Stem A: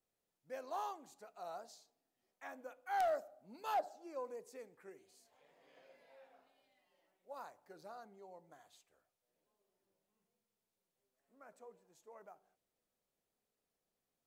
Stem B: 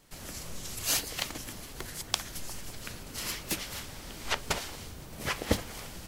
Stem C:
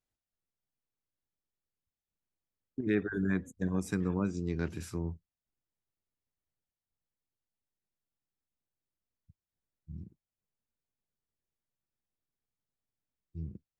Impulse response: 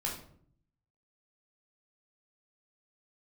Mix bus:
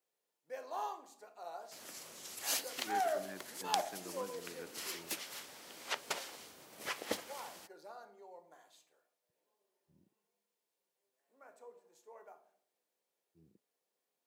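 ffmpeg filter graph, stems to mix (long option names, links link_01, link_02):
-filter_complex "[0:a]bandreject=frequency=1300:width=13,volume=-2dB,asplit=2[link_01][link_02];[link_02]volume=-5dB[link_03];[1:a]adelay=1600,volume=-7dB[link_04];[2:a]volume=-12.5dB[link_05];[3:a]atrim=start_sample=2205[link_06];[link_03][link_06]afir=irnorm=-1:irlink=0[link_07];[link_01][link_04][link_05][link_07]amix=inputs=4:normalize=0,highpass=350"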